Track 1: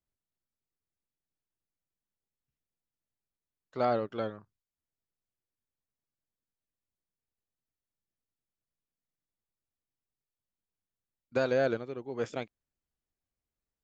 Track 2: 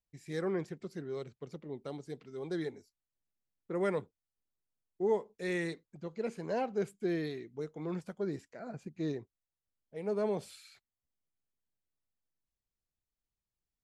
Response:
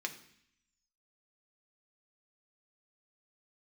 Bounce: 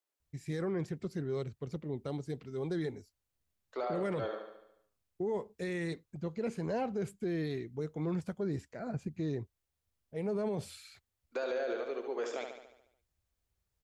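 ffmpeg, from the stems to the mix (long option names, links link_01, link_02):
-filter_complex "[0:a]highpass=frequency=370:width=0.5412,highpass=frequency=370:width=1.3066,alimiter=level_in=5dB:limit=-24dB:level=0:latency=1,volume=-5dB,volume=2dB,asplit=2[link_01][link_02];[link_02]volume=-6.5dB[link_03];[1:a]adelay=200,volume=2.5dB[link_04];[link_03]aecho=0:1:72|144|216|288|360|432|504|576:1|0.55|0.303|0.166|0.0915|0.0503|0.0277|0.0152[link_05];[link_01][link_04][link_05]amix=inputs=3:normalize=0,equalizer=frequency=72:width=0.8:gain=15,alimiter=level_in=3dB:limit=-24dB:level=0:latency=1:release=25,volume=-3dB"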